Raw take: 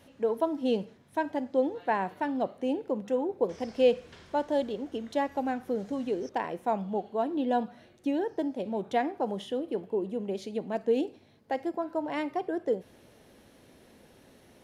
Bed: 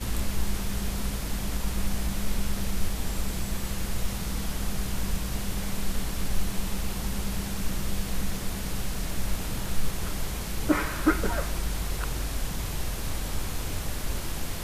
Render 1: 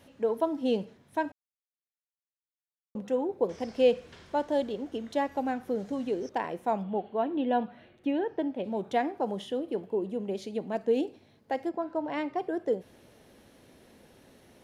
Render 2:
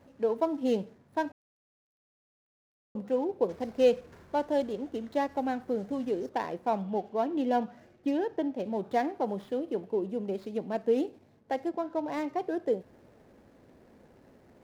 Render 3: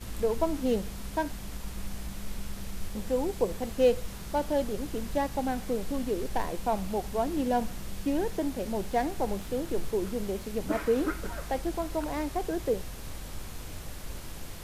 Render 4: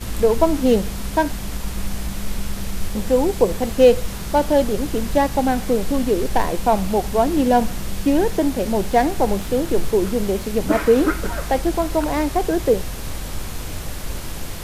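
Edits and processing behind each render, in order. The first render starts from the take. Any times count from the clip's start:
1.32–2.95 s: mute; 6.83–8.64 s: resonant high shelf 4.1 kHz -11 dB, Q 1.5; 11.69–12.38 s: distance through air 67 m
median filter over 15 samples
add bed -9 dB
trim +11.5 dB; peak limiter -3 dBFS, peak gain reduction 1 dB

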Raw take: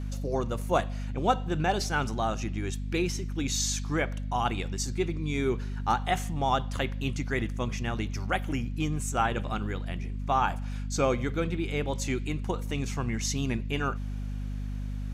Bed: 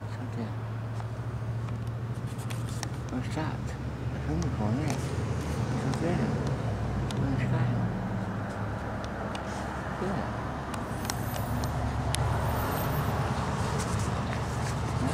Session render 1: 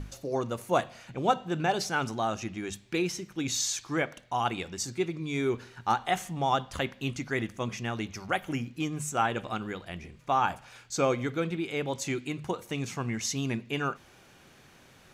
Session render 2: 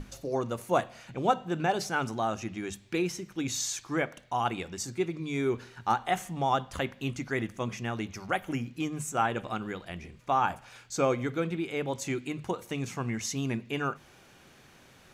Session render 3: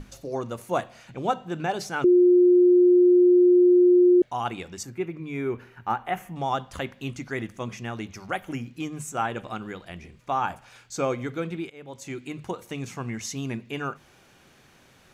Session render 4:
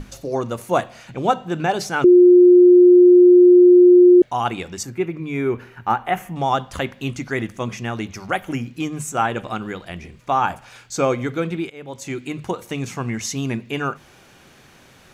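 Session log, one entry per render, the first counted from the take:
hum notches 50/100/150/200/250 Hz
hum notches 50/100/150 Hz; dynamic bell 4.2 kHz, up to -4 dB, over -45 dBFS, Q 0.86
2.04–4.22 s: bleep 357 Hz -13 dBFS; 4.83–6.36 s: high-order bell 5.7 kHz -11.5 dB; 11.70–12.35 s: fade in, from -19 dB
trim +7 dB

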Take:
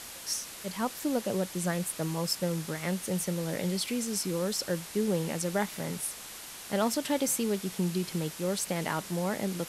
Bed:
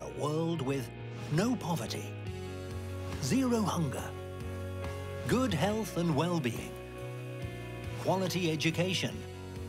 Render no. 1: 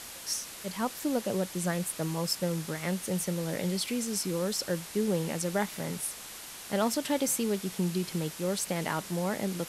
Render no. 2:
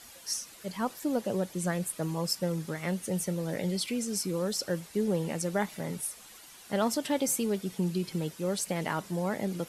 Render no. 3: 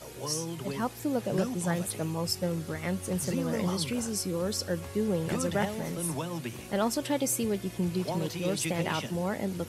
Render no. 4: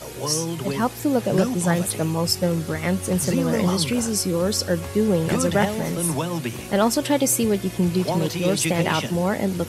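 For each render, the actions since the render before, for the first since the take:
no audible change
noise reduction 10 dB, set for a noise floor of -44 dBFS
add bed -4.5 dB
trim +9 dB

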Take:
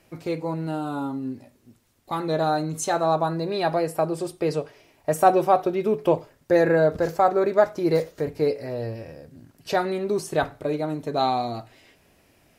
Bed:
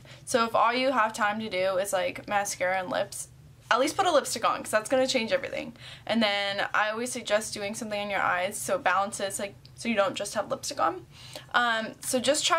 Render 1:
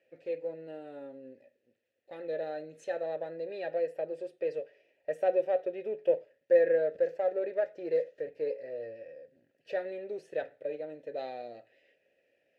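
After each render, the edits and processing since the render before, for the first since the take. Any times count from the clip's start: partial rectifier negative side -3 dB; vowel filter e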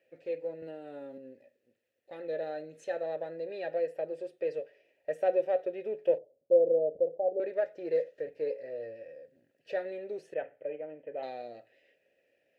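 0.62–1.18 s: three bands compressed up and down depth 100%; 6.18–7.40 s: steep low-pass 830 Hz 72 dB/octave; 10.34–11.23 s: rippled Chebyshev low-pass 3.2 kHz, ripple 3 dB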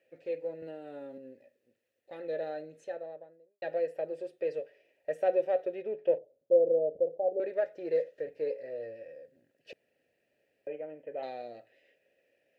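2.41–3.62 s: studio fade out; 5.82–7.24 s: distance through air 160 m; 9.73–10.67 s: room tone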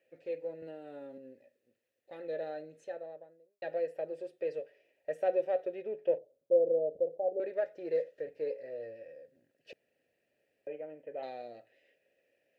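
trim -2.5 dB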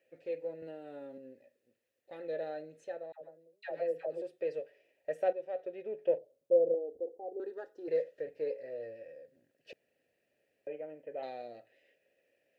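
3.12–4.22 s: phase dispersion lows, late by 94 ms, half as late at 760 Hz; 5.33–6.05 s: fade in, from -12.5 dB; 6.74–7.88 s: static phaser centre 600 Hz, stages 6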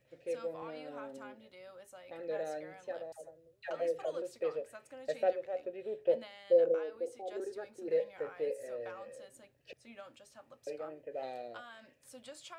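add bed -26 dB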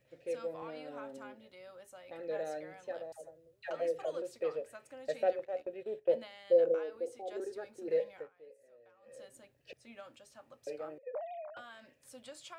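5.39–6.09 s: gate -49 dBFS, range -11 dB; 8.12–9.19 s: dip -20 dB, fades 0.17 s; 10.98–11.57 s: formants replaced by sine waves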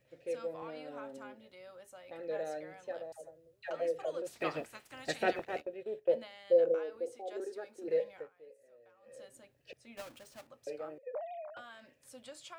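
4.26–5.60 s: spectral peaks clipped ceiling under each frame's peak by 22 dB; 7.15–7.84 s: high-pass 220 Hz; 9.97–10.47 s: square wave that keeps the level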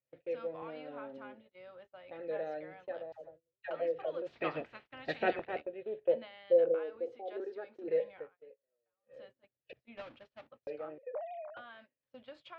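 low-pass 3.5 kHz 24 dB/octave; gate -55 dBFS, range -25 dB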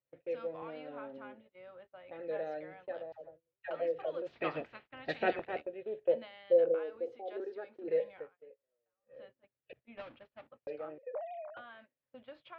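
level-controlled noise filter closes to 2.3 kHz, open at -32.5 dBFS

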